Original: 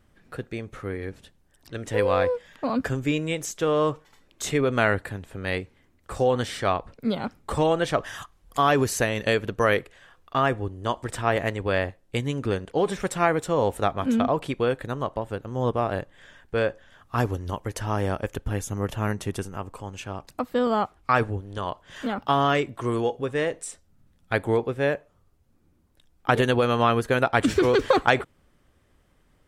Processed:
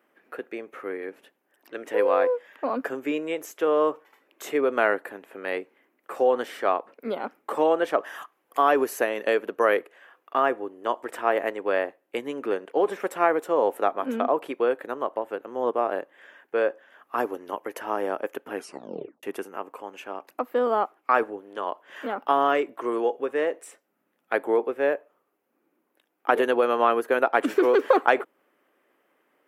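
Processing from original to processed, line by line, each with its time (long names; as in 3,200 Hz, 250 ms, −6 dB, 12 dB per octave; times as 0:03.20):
0:18.54: tape stop 0.69 s
whole clip: dynamic equaliser 2,300 Hz, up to −5 dB, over −41 dBFS, Q 1.3; high-pass filter 310 Hz 24 dB per octave; flat-topped bell 5,700 Hz −12 dB; level +1.5 dB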